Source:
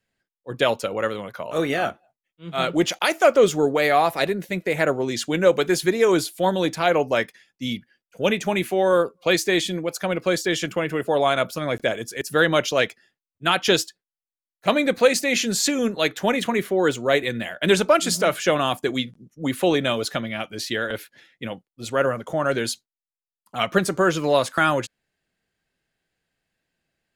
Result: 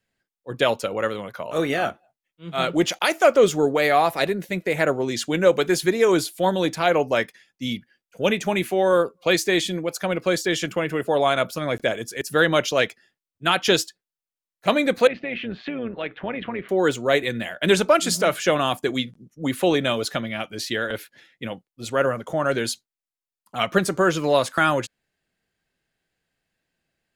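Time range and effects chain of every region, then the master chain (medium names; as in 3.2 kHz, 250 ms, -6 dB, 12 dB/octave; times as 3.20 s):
15.07–16.69 s: steep low-pass 3 kHz + AM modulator 120 Hz, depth 30% + compression 2:1, threshold -28 dBFS
whole clip: none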